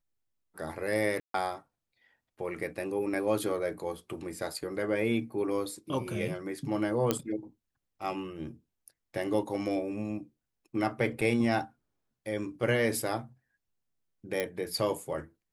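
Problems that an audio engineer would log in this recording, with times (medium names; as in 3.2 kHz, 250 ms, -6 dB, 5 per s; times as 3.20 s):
1.20–1.34 s: dropout 143 ms
7.11 s: pop -11 dBFS
11.21–11.22 s: dropout 6 ms
14.40 s: pop -16 dBFS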